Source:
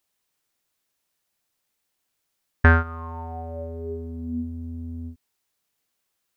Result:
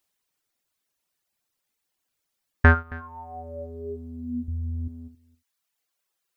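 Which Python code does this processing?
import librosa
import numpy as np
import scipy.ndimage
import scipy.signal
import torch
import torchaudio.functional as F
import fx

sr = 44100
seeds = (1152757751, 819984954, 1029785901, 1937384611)

y = fx.dereverb_blind(x, sr, rt60_s=1.3)
y = fx.low_shelf(y, sr, hz=290.0, db=12.0, at=(4.48, 4.88))
y = y + 10.0 ** (-21.0 / 20.0) * np.pad(y, (int(271 * sr / 1000.0), 0))[:len(y)]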